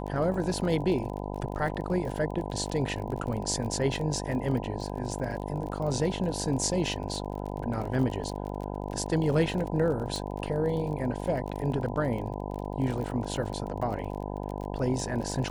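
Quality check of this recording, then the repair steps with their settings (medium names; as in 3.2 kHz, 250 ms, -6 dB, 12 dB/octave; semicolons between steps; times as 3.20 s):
buzz 50 Hz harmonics 20 -35 dBFS
crackle 32 per s -35 dBFS
10.16 s: pop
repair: de-click; de-hum 50 Hz, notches 20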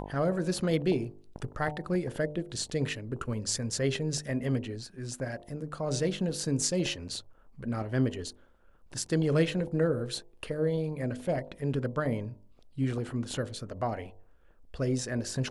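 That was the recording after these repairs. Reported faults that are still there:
nothing left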